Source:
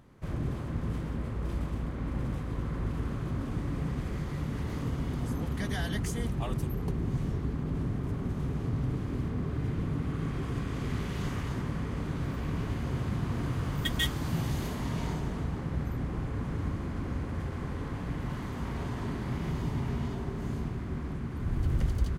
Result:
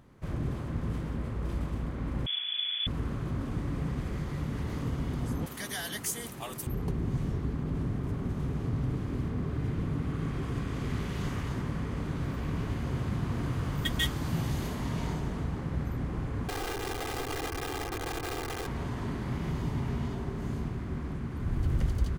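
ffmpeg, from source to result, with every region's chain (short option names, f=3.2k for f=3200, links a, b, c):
-filter_complex "[0:a]asettb=1/sr,asplit=3[a][b][c];[a]atrim=end=2.264[d];[b]atrim=start=2.26:end=2.87,asetpts=PTS-STARTPTS,afade=t=in:d=0.004:c=qsin,afade=t=out:st=0.606:d=0.004:c=qsin,equalizer=f=260:w=1.3:g=-4.5,asplit=2[e][f];[f]adelay=36,volume=-13.5dB[g];[e][g]amix=inputs=2:normalize=0,atrim=end_sample=26901,lowpass=f=3k:t=q:w=0.5098,lowpass=f=3k:t=q:w=0.6013,lowpass=f=3k:t=q:w=0.9,lowpass=f=3k:t=q:w=2.563,afreqshift=-3500[h];[c]atrim=start=2.866[i];[d][h]acrossfade=d=0.004:c1=hsin:c2=qsin[j];[j][i]acrossfade=d=0.004:c1=qsin:c2=hsin,asettb=1/sr,asplit=3[k][l][m];[k]atrim=end=5.464[n];[l]atrim=start=5.46:end=6.67,asetpts=PTS-STARTPTS,afade=t=in:d=0.004:c=qsin,afade=t=out:st=1.206:d=0.004:c=qsin,highpass=f=540:p=1,aemphasis=mode=production:type=50fm,asoftclip=type=hard:threshold=-24dB[o];[m]atrim=start=6.666[p];[n][o]acrossfade=d=0.004:c1=hsin:c2=qsin[q];[q][p]acrossfade=d=0.004:c1=qsin:c2=hsin,asettb=1/sr,asplit=3[r][s][t];[r]atrim=end=16.484[u];[s]atrim=start=16.48:end=18.67,asetpts=PTS-STARTPTS,afade=t=in:d=0.004:c=qsin,afade=t=out:st=2.186:d=0.004:c=qsin,adynamicsmooth=sensitivity=7.5:basefreq=1.1k,aeval=exprs='(mod(37.6*val(0)+1,2)-1)/37.6':c=same,aecho=1:1:2.5:0.76,atrim=end_sample=96579[v];[t]atrim=start=18.666[w];[u][v]acrossfade=d=0.004:c1=hsin:c2=qsin[x];[x][w]acrossfade=d=0.004:c1=qsin:c2=hsin"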